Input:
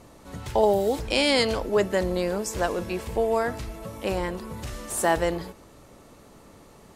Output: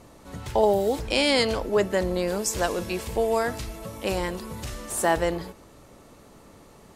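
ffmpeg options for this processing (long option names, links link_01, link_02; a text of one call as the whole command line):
ffmpeg -i in.wav -filter_complex "[0:a]asplit=3[link_01][link_02][link_03];[link_01]afade=type=out:start_time=2.27:duration=0.02[link_04];[link_02]adynamicequalizer=threshold=0.00794:dfrequency=2600:dqfactor=0.7:tfrequency=2600:tqfactor=0.7:attack=5:release=100:ratio=0.375:range=3:mode=boostabove:tftype=highshelf,afade=type=in:start_time=2.27:duration=0.02,afade=type=out:start_time=4.73:duration=0.02[link_05];[link_03]afade=type=in:start_time=4.73:duration=0.02[link_06];[link_04][link_05][link_06]amix=inputs=3:normalize=0" out.wav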